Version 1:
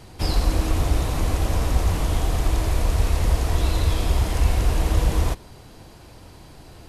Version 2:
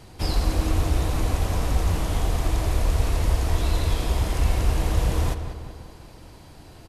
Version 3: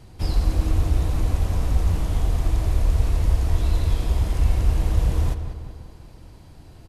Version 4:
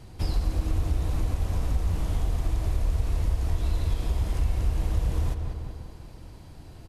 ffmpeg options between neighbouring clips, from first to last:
-filter_complex "[0:a]asplit=2[a][b];[b]adelay=192,lowpass=f=3.2k:p=1,volume=-9dB,asplit=2[c][d];[d]adelay=192,lowpass=f=3.2k:p=1,volume=0.54,asplit=2[e][f];[f]adelay=192,lowpass=f=3.2k:p=1,volume=0.54,asplit=2[g][h];[h]adelay=192,lowpass=f=3.2k:p=1,volume=0.54,asplit=2[i][j];[j]adelay=192,lowpass=f=3.2k:p=1,volume=0.54,asplit=2[k][l];[l]adelay=192,lowpass=f=3.2k:p=1,volume=0.54[m];[a][c][e][g][i][k][m]amix=inputs=7:normalize=0,volume=-2dB"
-af "lowshelf=f=230:g=8.5,volume=-5.5dB"
-af "acompressor=threshold=-25dB:ratio=2"

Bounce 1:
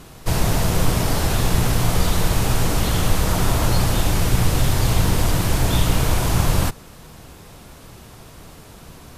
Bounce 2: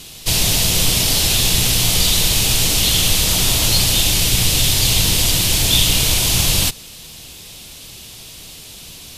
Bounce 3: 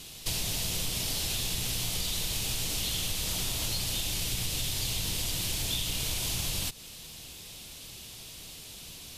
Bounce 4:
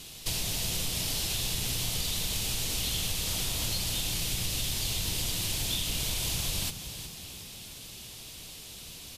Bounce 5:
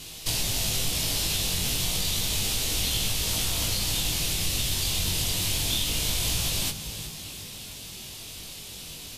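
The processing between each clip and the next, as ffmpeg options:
-af "highshelf=f=2.1k:t=q:w=1.5:g=13.5,volume=-2dB"
-af "acompressor=threshold=-20dB:ratio=6,volume=-8.5dB"
-filter_complex "[0:a]asplit=6[a][b][c][d][e][f];[b]adelay=364,afreqshift=30,volume=-11dB[g];[c]adelay=728,afreqshift=60,volume=-17.4dB[h];[d]adelay=1092,afreqshift=90,volume=-23.8dB[i];[e]adelay=1456,afreqshift=120,volume=-30.1dB[j];[f]adelay=1820,afreqshift=150,volume=-36.5dB[k];[a][g][h][i][j][k]amix=inputs=6:normalize=0"
-af "flanger=delay=19:depth=2.5:speed=0.3,volume=7.5dB"

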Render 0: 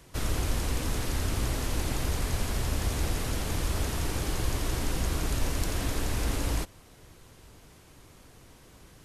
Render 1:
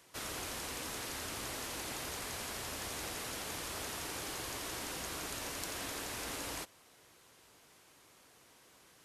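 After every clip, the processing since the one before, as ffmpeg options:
-af "highpass=f=660:p=1,volume=-4dB"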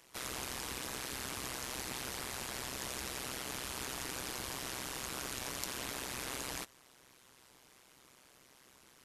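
-af "equalizer=f=580:t=o:w=0.77:g=-2.5,tremolo=f=130:d=1,volume=4.5dB"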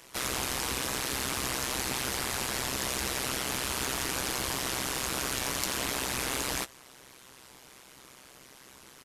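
-filter_complex "[0:a]asplit=2[a][b];[b]volume=35dB,asoftclip=hard,volume=-35dB,volume=-4dB[c];[a][c]amix=inputs=2:normalize=0,asplit=2[d][e];[e]adelay=15,volume=-11dB[f];[d][f]amix=inputs=2:normalize=0,volume=5dB"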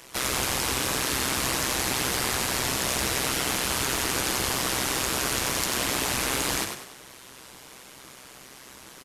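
-filter_complex "[0:a]asplit=2[a][b];[b]alimiter=limit=-22dB:level=0:latency=1:release=168,volume=-2dB[c];[a][c]amix=inputs=2:normalize=0,asplit=6[d][e][f][g][h][i];[e]adelay=98,afreqshift=41,volume=-6dB[j];[f]adelay=196,afreqshift=82,volume=-14.2dB[k];[g]adelay=294,afreqshift=123,volume=-22.4dB[l];[h]adelay=392,afreqshift=164,volume=-30.5dB[m];[i]adelay=490,afreqshift=205,volume=-38.7dB[n];[d][j][k][l][m][n]amix=inputs=6:normalize=0"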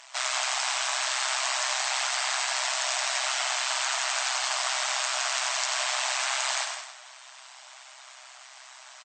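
-af "aecho=1:1:164:0.316,afftfilt=real='re*between(b*sr/4096,600,8500)':imag='im*between(b*sr/4096,600,8500)':win_size=4096:overlap=0.75" -ar 48000 -c:a libopus -b:a 48k

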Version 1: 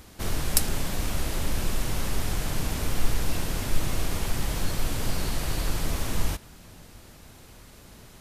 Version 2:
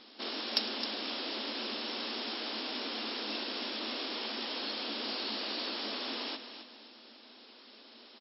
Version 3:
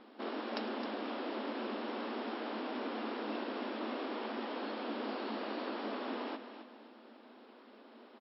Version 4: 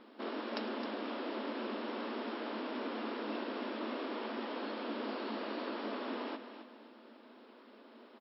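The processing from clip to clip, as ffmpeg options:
-af "aecho=1:1:264|528|792:0.316|0.098|0.0304,afftfilt=real='re*between(b*sr/4096,210,5500)':imag='im*between(b*sr/4096,210,5500)':win_size=4096:overlap=0.75,aexciter=amount=2.6:drive=5.6:freq=2.9k,volume=-5dB"
-af "lowpass=1.4k,volume=3dB"
-af "bandreject=f=770:w=12"

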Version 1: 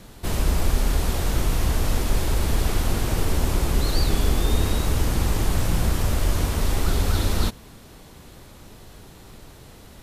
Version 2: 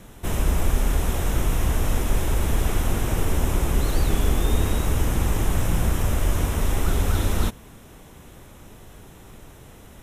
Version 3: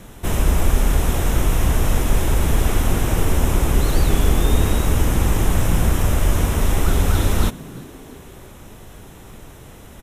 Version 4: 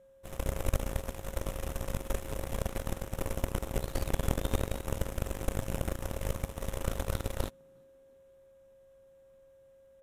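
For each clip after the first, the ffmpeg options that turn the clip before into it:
-af "equalizer=f=4.5k:t=o:w=0.31:g=-14"
-filter_complex "[0:a]asplit=4[a][b][c][d];[b]adelay=339,afreqshift=120,volume=-22.5dB[e];[c]adelay=678,afreqshift=240,volume=-28.5dB[f];[d]adelay=1017,afreqshift=360,volume=-34.5dB[g];[a][e][f][g]amix=inputs=4:normalize=0,volume=4.5dB"
-af "aeval=exprs='val(0)+0.0631*sin(2*PI*540*n/s)':c=same,aeval=exprs='0.75*(cos(1*acos(clip(val(0)/0.75,-1,1)))-cos(1*PI/2))+0.237*(cos(3*acos(clip(val(0)/0.75,-1,1)))-cos(3*PI/2))':c=same,volume=-8.5dB"

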